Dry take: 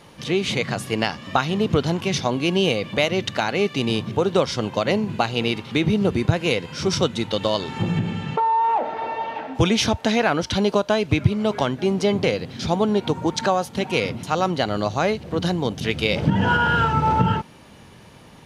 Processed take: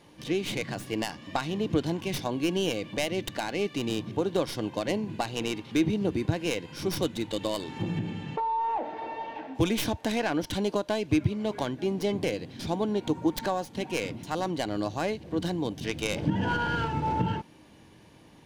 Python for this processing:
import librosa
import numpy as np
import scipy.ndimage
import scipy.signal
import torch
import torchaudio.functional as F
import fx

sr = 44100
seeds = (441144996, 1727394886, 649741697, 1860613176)

y = fx.tracing_dist(x, sr, depth_ms=0.12)
y = fx.peak_eq(y, sr, hz=310.0, db=10.0, octaves=0.26)
y = fx.notch(y, sr, hz=1300.0, q=7.4)
y = F.gain(torch.from_numpy(y), -9.0).numpy()